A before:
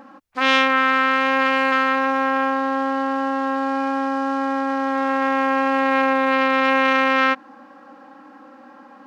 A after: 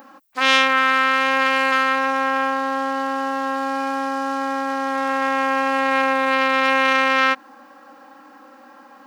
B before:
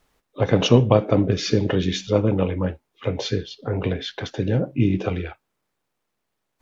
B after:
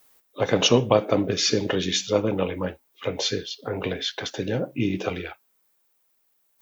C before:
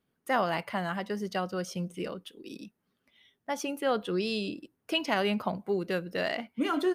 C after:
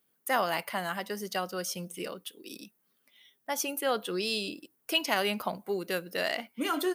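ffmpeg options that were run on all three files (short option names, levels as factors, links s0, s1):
-af "aemphasis=mode=production:type=bsi"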